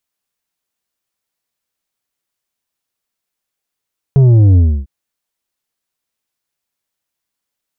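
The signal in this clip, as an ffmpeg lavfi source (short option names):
-f lavfi -i "aevalsrc='0.531*clip((0.7-t)/0.29,0,1)*tanh(2.24*sin(2*PI*140*0.7/log(65/140)*(exp(log(65/140)*t/0.7)-1)))/tanh(2.24)':d=0.7:s=44100"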